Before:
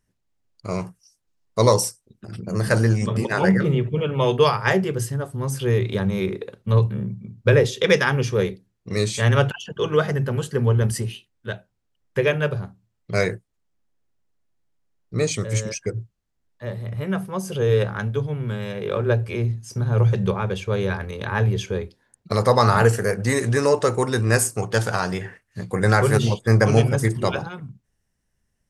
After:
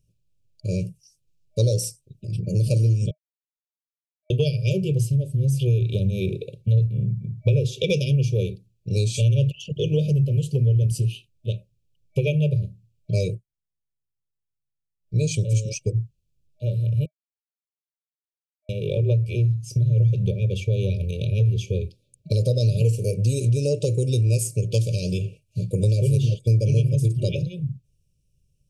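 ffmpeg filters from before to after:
ffmpeg -i in.wav -filter_complex "[0:a]asplit=7[link_01][link_02][link_03][link_04][link_05][link_06][link_07];[link_01]atrim=end=3.11,asetpts=PTS-STARTPTS,afade=type=out:start_time=3.106:duration=0.004:curve=hsin[link_08];[link_02]atrim=start=3.11:end=4.3,asetpts=PTS-STARTPTS,volume=0[link_09];[link_03]atrim=start=4.3:end=13.44,asetpts=PTS-STARTPTS,afade=type=in:duration=0.004:curve=hsin,afade=type=out:start_time=8.96:duration=0.18:silence=0.105925[link_10];[link_04]atrim=start=13.44:end=15,asetpts=PTS-STARTPTS,volume=-19.5dB[link_11];[link_05]atrim=start=15:end=17.06,asetpts=PTS-STARTPTS,afade=type=in:duration=0.18:silence=0.105925,afade=type=out:start_time=2.056:duration=0.004:curve=hsin[link_12];[link_06]atrim=start=17.06:end=18.69,asetpts=PTS-STARTPTS,volume=0[link_13];[link_07]atrim=start=18.69,asetpts=PTS-STARTPTS,afade=type=in:duration=0.004:curve=hsin[link_14];[link_08][link_09][link_10][link_11][link_12][link_13][link_14]concat=n=7:v=0:a=1,afftfilt=real='re*(1-between(b*sr/4096,620,2300))':imag='im*(1-between(b*sr/4096,620,2300))':win_size=4096:overlap=0.75,lowshelf=frequency=180:width_type=q:width=3:gain=6,acompressor=threshold=-19dB:ratio=3" out.wav

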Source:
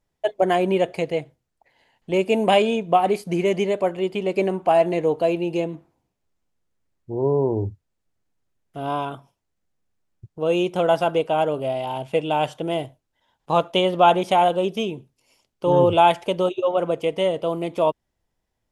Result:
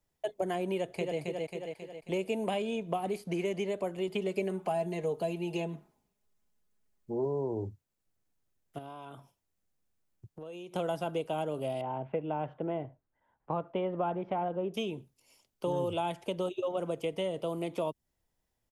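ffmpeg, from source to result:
ffmpeg -i in.wav -filter_complex "[0:a]asplit=2[link_01][link_02];[link_02]afade=type=in:start_time=0.73:duration=0.01,afade=type=out:start_time=1.19:duration=0.01,aecho=0:1:270|540|810|1080|1350|1620:0.530884|0.265442|0.132721|0.0663606|0.0331803|0.0165901[link_03];[link_01][link_03]amix=inputs=2:normalize=0,asettb=1/sr,asplit=3[link_04][link_05][link_06];[link_04]atrim=end=4.074[link_07];[link_05]atrim=start=4.07:end=7.25,asetpts=PTS-STARTPTS,afade=type=in:duration=0.004:curve=qsin,afade=type=out:start_time=3.176:duration=0.004:curve=qsin,aecho=1:1:4.8:0.65,atrim=end_sample=140238[link_08];[link_06]atrim=start=7.246[link_09];[link_07][link_08]acrossfade=duration=0.004:curve1=hsin:curve2=qsin[link_10];[link_10][link_09]acrossfade=duration=0.004:curve1=qsin:curve2=hsin,asettb=1/sr,asplit=3[link_11][link_12][link_13];[link_11]atrim=end=8.784[link_14];[link_12]atrim=start=8.78:end=10.75,asetpts=PTS-STARTPTS,afade=type=in:duration=0.004:curve=qsin,afade=type=out:start_time=1.966:duration=0.004:curve=qsin,acompressor=threshold=-36dB:ratio=10:attack=3.2:release=140:knee=1:detection=peak[link_15];[link_13]atrim=start=10.746[link_16];[link_14][link_15]acrossfade=duration=0.004:curve1=hsin:curve2=qsin[link_17];[link_17][link_16]acrossfade=duration=0.004:curve1=qsin:curve2=hsin,asettb=1/sr,asplit=3[link_18][link_19][link_20];[link_18]atrim=end=11.814[link_21];[link_19]atrim=start=11.81:end=14.74,asetpts=PTS-STARTPTS,afade=type=in:duration=0.004:curve=qsin,afade=type=out:start_time=2.926:duration=0.004:curve=qsin,lowpass=frequency=1900:width=0.5412,lowpass=frequency=1900:width=1.3066[link_22];[link_20]atrim=start=14.736[link_23];[link_21][link_22]acrossfade=duration=0.004:curve1=hsin:curve2=qsin[link_24];[link_24][link_23]acrossfade=duration=0.004:curve1=qsin:curve2=hsin,highshelf=frequency=8600:gain=10,acrossover=split=93|340|4600[link_25][link_26][link_27][link_28];[link_25]acompressor=threshold=-56dB:ratio=4[link_29];[link_26]acompressor=threshold=-32dB:ratio=4[link_30];[link_27]acompressor=threshold=-29dB:ratio=4[link_31];[link_28]acompressor=threshold=-52dB:ratio=4[link_32];[link_29][link_30][link_31][link_32]amix=inputs=4:normalize=0,volume=-5dB" out.wav

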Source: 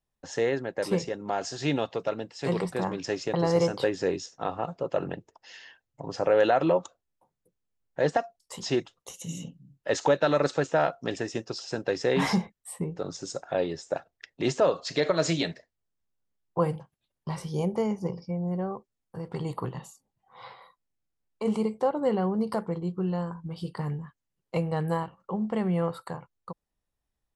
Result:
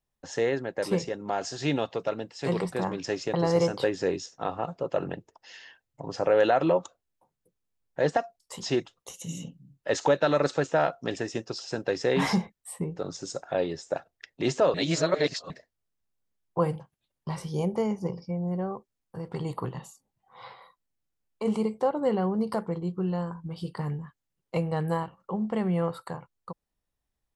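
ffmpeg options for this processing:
ffmpeg -i in.wav -filter_complex "[0:a]asplit=3[link_01][link_02][link_03];[link_01]atrim=end=14.742[link_04];[link_02]atrim=start=14.738:end=15.502,asetpts=PTS-STARTPTS,areverse[link_05];[link_03]atrim=start=15.498[link_06];[link_04][link_05]acrossfade=duration=0.004:curve1=hsin:curve2=hsin[link_07];[link_07][link_06]acrossfade=duration=0.004:curve1=hsin:curve2=hsin" out.wav

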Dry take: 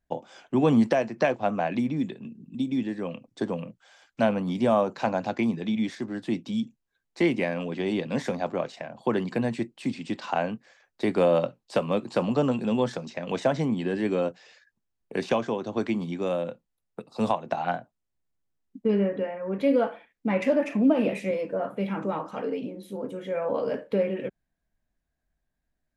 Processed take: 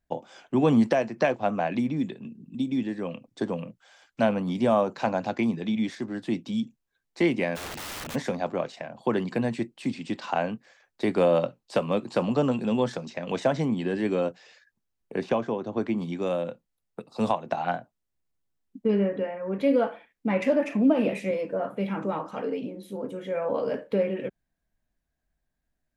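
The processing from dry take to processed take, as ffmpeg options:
ffmpeg -i in.wav -filter_complex "[0:a]asplit=3[link_01][link_02][link_03];[link_01]afade=type=out:start_time=7.55:duration=0.02[link_04];[link_02]aeval=exprs='(mod(39.8*val(0)+1,2)-1)/39.8':channel_layout=same,afade=type=in:start_time=7.55:duration=0.02,afade=type=out:start_time=8.14:duration=0.02[link_05];[link_03]afade=type=in:start_time=8.14:duration=0.02[link_06];[link_04][link_05][link_06]amix=inputs=3:normalize=0,asettb=1/sr,asplit=3[link_07][link_08][link_09];[link_07]atrim=end=15.144[link_10];[link_08]atrim=start=15.14:end=15.98,asetpts=PTS-STARTPTS,afade=type=in:duration=0.004:curve=qsin,afade=type=out:start_time=0.836:duration=0.004:curve=qsin,highshelf=frequency=2600:gain=-10[link_11];[link_09]atrim=start=15.976[link_12];[link_10][link_11]acrossfade=duration=0.004:curve1=hsin:curve2=qsin[link_13];[link_13][link_12]acrossfade=duration=0.004:curve1=qsin:curve2=hsin" out.wav

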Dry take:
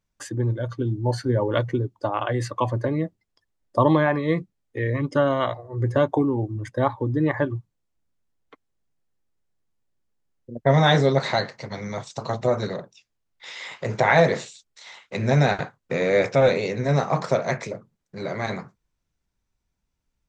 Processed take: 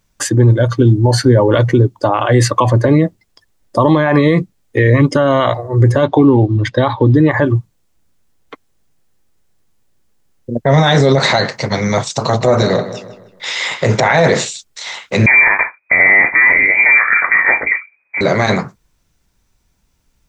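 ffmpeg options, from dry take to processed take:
ffmpeg -i in.wav -filter_complex "[0:a]asettb=1/sr,asplit=3[link_01][link_02][link_03];[link_01]atrim=end=6.034[link_04];[link_02]atrim=start=6.03:end=7.16,asetpts=PTS-STARTPTS,afade=type=in:duration=0.004:curve=qsin,afade=type=out:start_time=1.126:duration=0.004:curve=qsin,lowpass=frequency=3800:width_type=q:width=2.6[link_05];[link_03]atrim=start=7.156[link_06];[link_04][link_05]acrossfade=duration=0.004:curve1=hsin:curve2=qsin[link_07];[link_07][link_06]acrossfade=duration=0.004:curve1=qsin:curve2=hsin,asettb=1/sr,asplit=3[link_08][link_09][link_10];[link_08]atrim=end=12.214[link_11];[link_09]atrim=start=12.21:end=14.3,asetpts=PTS-STARTPTS,afade=type=in:duration=0.004:curve=qsin,afade=type=out:start_time=2.086:duration=0.004:curve=qsin,asplit=2[link_12][link_13];[link_13]adelay=156,lowpass=frequency=3700:poles=1,volume=-13dB,asplit=2[link_14][link_15];[link_15]adelay=156,lowpass=frequency=3700:poles=1,volume=0.44,asplit=2[link_16][link_17];[link_17]adelay=156,lowpass=frequency=3700:poles=1,volume=0.44,asplit=2[link_18][link_19];[link_19]adelay=156,lowpass=frequency=3700:poles=1,volume=0.44[link_20];[link_12][link_14][link_16][link_18][link_20]amix=inputs=5:normalize=0,atrim=end_sample=92169[link_21];[link_10]atrim=start=14.296[link_22];[link_11][link_21]acrossfade=duration=0.004:curve1=hsin:curve2=qsin[link_23];[link_23][link_22]acrossfade=duration=0.004:curve1=qsin:curve2=hsin,asettb=1/sr,asplit=3[link_24][link_25][link_26];[link_24]atrim=end=15.264[link_27];[link_25]atrim=start=15.26:end=18.21,asetpts=PTS-STARTPTS,afade=type=in:duration=0.004:curve=qsin,afade=type=out:start_time=2.946:duration=0.004:curve=qsin,lowpass=frequency=2100:width_type=q:width=0.5098,lowpass=frequency=2100:width_type=q:width=0.6013,lowpass=frequency=2100:width_type=q:width=0.9,lowpass=frequency=2100:width_type=q:width=2.563,afreqshift=-2500[link_28];[link_26]atrim=start=18.206[link_29];[link_27][link_28]acrossfade=duration=0.004:curve1=hsin:curve2=qsin[link_30];[link_30][link_29]acrossfade=duration=0.004:curve1=qsin:curve2=hsin,highshelf=frequency=4700:gain=4.5,alimiter=level_in=17dB:limit=-1dB:release=50:level=0:latency=1,volume=-1dB" out.wav

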